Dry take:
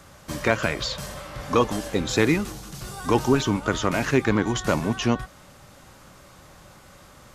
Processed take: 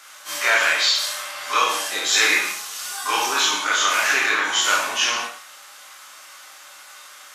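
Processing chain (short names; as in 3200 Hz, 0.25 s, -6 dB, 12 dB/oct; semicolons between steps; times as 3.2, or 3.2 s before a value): spectral dilation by 60 ms; HPF 1400 Hz 12 dB/oct; non-linear reverb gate 0.24 s falling, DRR -3.5 dB; gain +2.5 dB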